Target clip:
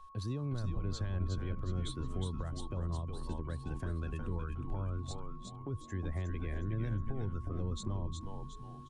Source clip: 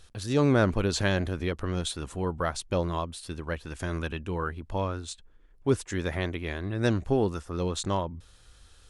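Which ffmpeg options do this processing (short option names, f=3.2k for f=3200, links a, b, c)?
-filter_complex "[0:a]afftdn=nr=13:nf=-36,highshelf=f=2.5k:g=-4,acrossover=split=120[a][b];[b]acompressor=threshold=-39dB:ratio=6[c];[a][c]amix=inputs=2:normalize=0,alimiter=level_in=5dB:limit=-24dB:level=0:latency=1:release=92,volume=-5dB,asplit=2[d][e];[e]asplit=5[f][g][h][i][j];[f]adelay=363,afreqshift=-110,volume=-4dB[k];[g]adelay=726,afreqshift=-220,volume=-12dB[l];[h]adelay=1089,afreqshift=-330,volume=-19.9dB[m];[i]adelay=1452,afreqshift=-440,volume=-27.9dB[n];[j]adelay=1815,afreqshift=-550,volume=-35.8dB[o];[k][l][m][n][o]amix=inputs=5:normalize=0[p];[d][p]amix=inputs=2:normalize=0,aeval=exprs='val(0)+0.00224*sin(2*PI*1100*n/s)':c=same,acrossover=split=350|3000[q][r][s];[r]acompressor=threshold=-45dB:ratio=6[t];[q][t][s]amix=inputs=3:normalize=0"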